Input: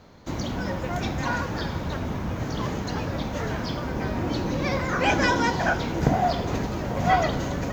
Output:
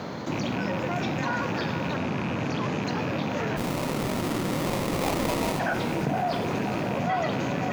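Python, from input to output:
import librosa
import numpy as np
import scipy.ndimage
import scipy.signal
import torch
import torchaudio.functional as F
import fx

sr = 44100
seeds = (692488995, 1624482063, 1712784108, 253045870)

y = fx.rattle_buzz(x, sr, strikes_db=-30.0, level_db=-26.0)
y = scipy.signal.sosfilt(scipy.signal.butter(4, 120.0, 'highpass', fs=sr, output='sos'), y)
y = fx.high_shelf(y, sr, hz=5400.0, db=-8.5)
y = fx.brickwall_lowpass(y, sr, high_hz=13000.0, at=(1.96, 2.83))
y = fx.sample_hold(y, sr, seeds[0], rate_hz=1600.0, jitter_pct=20, at=(3.56, 5.58), fade=0.02)
y = fx.echo_diffused(y, sr, ms=523, feedback_pct=59, wet_db=-14.5)
y = fx.env_flatten(y, sr, amount_pct=70)
y = y * librosa.db_to_amplitude(-7.5)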